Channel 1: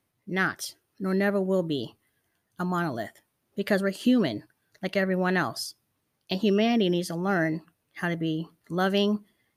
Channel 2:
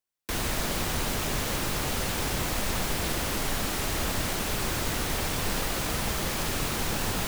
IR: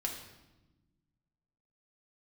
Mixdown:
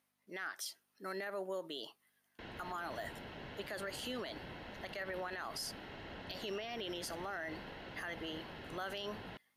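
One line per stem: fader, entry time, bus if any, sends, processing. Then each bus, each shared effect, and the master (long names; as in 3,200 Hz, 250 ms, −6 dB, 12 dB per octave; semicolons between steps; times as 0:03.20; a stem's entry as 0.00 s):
−3.0 dB, 0.00 s, no send, mains hum 50 Hz, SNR 30 dB; high-pass filter 670 Hz 12 dB per octave; brickwall limiter −21 dBFS, peak gain reduction 7.5 dB
−16.0 dB, 2.10 s, no send, low-pass filter 3,500 Hz 24 dB per octave; notch comb filter 1,200 Hz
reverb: not used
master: brickwall limiter −32.5 dBFS, peak gain reduction 10 dB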